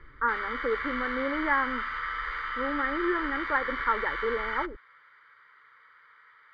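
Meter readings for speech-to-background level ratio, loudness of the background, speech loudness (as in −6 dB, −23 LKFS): 1.5 dB, −32.5 LKFS, −31.0 LKFS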